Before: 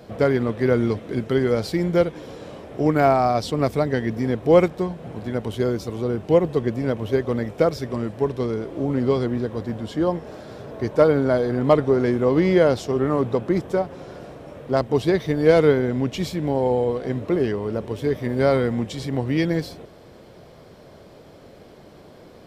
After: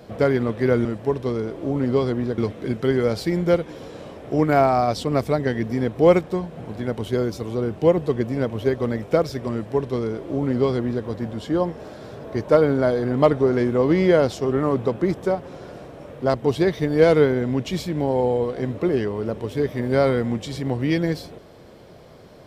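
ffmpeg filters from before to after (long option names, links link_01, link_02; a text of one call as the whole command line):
ffmpeg -i in.wav -filter_complex "[0:a]asplit=3[link_01][link_02][link_03];[link_01]atrim=end=0.852[link_04];[link_02]atrim=start=7.988:end=9.522[link_05];[link_03]atrim=start=0.848[link_06];[link_04][link_05]acrossfade=duration=0.004:curve1=hsin:curve2=hsin[link_07];[link_07][link_06]acrossfade=duration=0.004:curve1=hsin:curve2=hsin" out.wav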